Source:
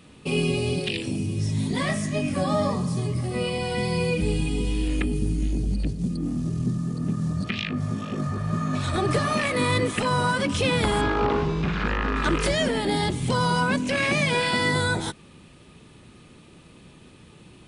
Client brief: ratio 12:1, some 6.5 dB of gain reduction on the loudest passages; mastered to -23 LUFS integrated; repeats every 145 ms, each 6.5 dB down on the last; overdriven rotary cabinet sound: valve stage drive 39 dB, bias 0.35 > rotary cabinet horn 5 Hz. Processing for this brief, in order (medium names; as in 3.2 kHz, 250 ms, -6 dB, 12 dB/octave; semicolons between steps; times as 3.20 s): compression 12:1, threshold -25 dBFS; feedback delay 145 ms, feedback 47%, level -6.5 dB; valve stage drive 39 dB, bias 0.35; rotary cabinet horn 5 Hz; trim +20 dB